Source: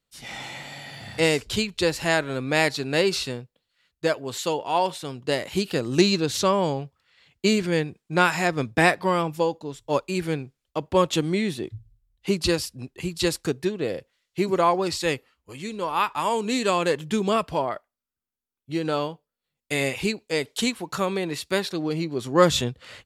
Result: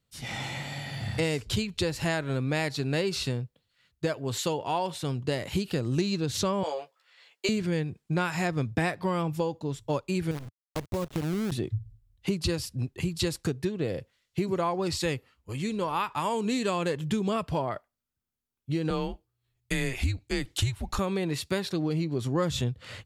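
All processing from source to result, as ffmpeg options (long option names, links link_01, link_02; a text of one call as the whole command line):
ffmpeg -i in.wav -filter_complex "[0:a]asettb=1/sr,asplit=3[link_01][link_02][link_03];[link_01]atrim=end=6.634[link_04];[link_02]atrim=start=6.63:end=7.49,asetpts=PTS-STARTPTS,afade=type=in:duration=0.004:curve=qsin,afade=type=out:start_time=0.856:duration=0.004:curve=qsin,highpass=frequency=470:width=0.5412,highpass=frequency=470:width=1.3066,asplit=2[link_05][link_06];[link_06]adelay=13,volume=-3.5dB[link_07];[link_05][link_07]amix=inputs=2:normalize=0,atrim=end_sample=37926[link_08];[link_03]atrim=start=7.486[link_09];[link_04][link_08]acrossfade=duration=0.004:curve1=hsin:curve2=qsin[link_10];[link_10][link_09]acrossfade=duration=0.004:curve1=qsin:curve2=hsin,asettb=1/sr,asplit=3[link_11][link_12][link_13];[link_11]atrim=end=10.314[link_14];[link_12]atrim=start=10.31:end=11.52,asetpts=PTS-STARTPTS,afade=type=in:duration=0.004:curve=qsin,afade=type=out:start_time=1.206:duration=0.004:curve=qsin,lowpass=1000,acrusher=bits=5:dc=4:mix=0:aa=0.000001,acompressor=threshold=-30dB:ratio=2.5:attack=3.2:release=140:knee=1:detection=peak[link_15];[link_13]atrim=start=11.516[link_16];[link_14][link_15]acrossfade=duration=0.004:curve1=hsin:curve2=qsin[link_17];[link_17][link_16]acrossfade=duration=0.004:curve1=qsin:curve2=hsin,asettb=1/sr,asplit=3[link_18][link_19][link_20];[link_18]atrim=end=18.904[link_21];[link_19]atrim=start=18.9:end=20.99,asetpts=PTS-STARTPTS,afade=type=in:duration=0.004:curve=qsin,afade=type=out:start_time=2.086:duration=0.004:curve=qsin,asubboost=boost=9:cutoff=130,afreqshift=-120[link_22];[link_20]atrim=start=20.986[link_23];[link_21][link_22]acrossfade=duration=0.004:curve1=hsin:curve2=qsin[link_24];[link_24][link_23]acrossfade=duration=0.004:curve1=qsin:curve2=hsin,equalizer=frequency=100:width=0.75:gain=11.5,acompressor=threshold=-26dB:ratio=4" out.wav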